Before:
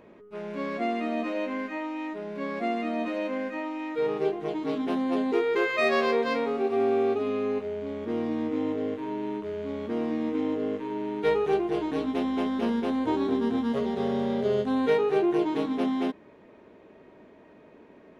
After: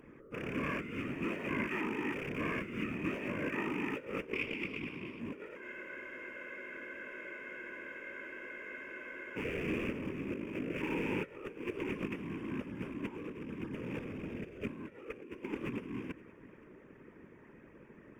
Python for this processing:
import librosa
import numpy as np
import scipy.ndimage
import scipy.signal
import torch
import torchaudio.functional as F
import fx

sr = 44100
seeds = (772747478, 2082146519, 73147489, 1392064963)

y = fx.rattle_buzz(x, sr, strikes_db=-45.0, level_db=-26.0)
y = fx.spec_box(y, sr, start_s=4.34, length_s=0.85, low_hz=2000.0, high_hz=5600.0, gain_db=10)
y = fx.over_compress(y, sr, threshold_db=-31.0, ratio=-0.5)
y = fx.fixed_phaser(y, sr, hz=1700.0, stages=4)
y = fx.whisperise(y, sr, seeds[0])
y = y + 10.0 ** (-22.0 / 20.0) * np.pad(y, (int(522 * sr / 1000.0), 0))[:len(y)]
y = fx.spec_freeze(y, sr, seeds[1], at_s=5.64, hold_s=3.74)
y = F.gain(torch.from_numpy(y), -4.0).numpy()